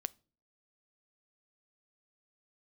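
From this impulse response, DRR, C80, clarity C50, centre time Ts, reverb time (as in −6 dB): 18.5 dB, 32.5 dB, 26.0 dB, 1 ms, non-exponential decay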